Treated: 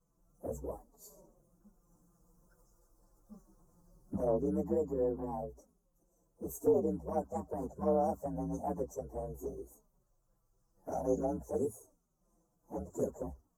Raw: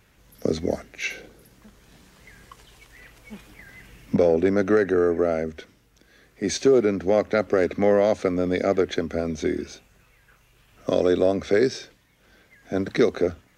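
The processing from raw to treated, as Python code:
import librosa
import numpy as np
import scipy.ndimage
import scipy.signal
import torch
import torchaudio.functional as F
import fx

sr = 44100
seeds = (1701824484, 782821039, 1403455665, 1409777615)

y = fx.partial_stretch(x, sr, pct=122)
y = scipy.signal.sosfilt(scipy.signal.cheby1(3, 1.0, [1200.0, 6400.0], 'bandstop', fs=sr, output='sos'), y)
y = fx.env_flanger(y, sr, rest_ms=6.1, full_db=-16.5)
y = fx.cheby_harmonics(y, sr, harmonics=(2,), levels_db=(-23,), full_scale_db=-10.0)
y = y * 10.0 ** (-8.0 / 20.0)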